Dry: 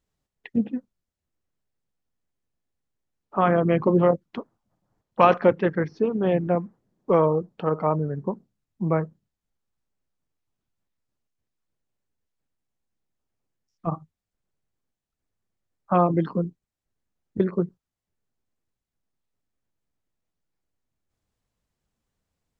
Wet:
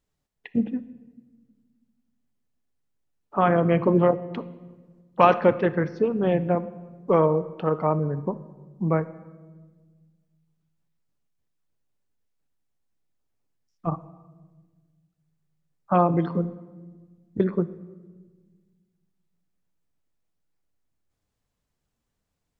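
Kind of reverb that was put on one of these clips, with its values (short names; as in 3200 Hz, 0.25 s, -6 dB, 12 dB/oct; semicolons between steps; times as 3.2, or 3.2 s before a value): shoebox room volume 1200 m³, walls mixed, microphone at 0.35 m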